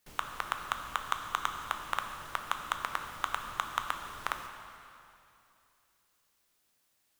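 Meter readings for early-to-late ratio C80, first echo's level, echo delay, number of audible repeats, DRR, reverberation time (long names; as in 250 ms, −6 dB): 6.5 dB, no echo audible, no echo audible, no echo audible, 4.5 dB, 2.7 s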